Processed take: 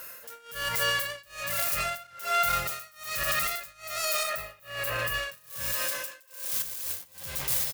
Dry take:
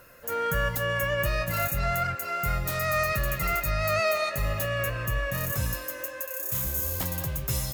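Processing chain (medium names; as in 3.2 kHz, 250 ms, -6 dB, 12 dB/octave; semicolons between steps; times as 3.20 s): tracing distortion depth 0.41 ms; tilt EQ +3.5 dB/octave; speakerphone echo 390 ms, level -7 dB; peak limiter -20 dBFS, peak gain reduction 14 dB; 4.23–5.14 s: peaking EQ 6.1 kHz -7 dB 1.8 oct; flutter echo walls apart 6.2 m, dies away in 0.21 s; tremolo 1.2 Hz, depth 97%; 6.62–7.04 s: compressor with a negative ratio -39 dBFS, ratio -1; trim +4 dB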